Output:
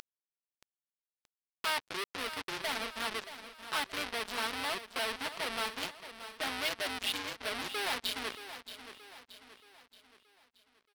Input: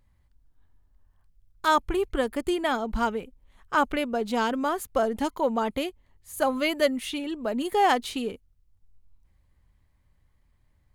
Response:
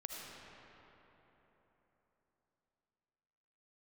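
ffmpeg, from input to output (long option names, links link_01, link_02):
-af "equalizer=frequency=300:width=0.64:gain=13,bandreject=frequency=60:width_type=h:width=6,bandreject=frequency=120:width_type=h:width=6,bandreject=frequency=180:width_type=h:width=6,bandreject=frequency=240:width_type=h:width=6,bandreject=frequency=300:width_type=h:width=6,bandreject=frequency=360:width_type=h:width=6,tremolo=f=190:d=0.788,aecho=1:1:4.6:0.69,acompressor=mode=upward:threshold=-28dB:ratio=2.5,aeval=exprs='val(0)+0.001*sin(2*PI*1700*n/s)':channel_layout=same,aresample=11025,asoftclip=type=tanh:threshold=-32.5dB,aresample=44100,tiltshelf=frequency=730:gain=-9.5,acrusher=bits=4:mix=0:aa=0.5,aecho=1:1:626|1252|1878|2504|3130:0.251|0.116|0.0532|0.0244|0.0112,volume=-1.5dB"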